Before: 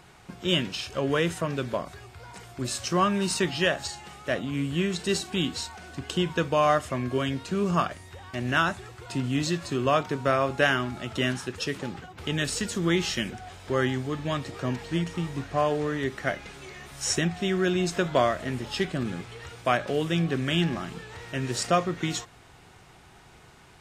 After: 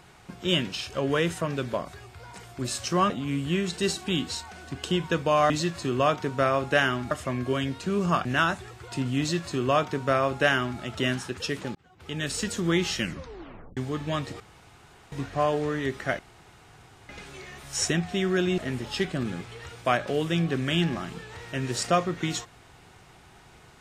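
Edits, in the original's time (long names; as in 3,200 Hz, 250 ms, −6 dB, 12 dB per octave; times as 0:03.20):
0:03.10–0:04.36: remove
0:07.90–0:08.43: remove
0:09.37–0:10.98: duplicate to 0:06.76
0:11.93–0:12.60: fade in
0:13.17: tape stop 0.78 s
0:14.58–0:15.30: fill with room tone
0:16.37: splice in room tone 0.90 s
0:17.86–0:18.38: remove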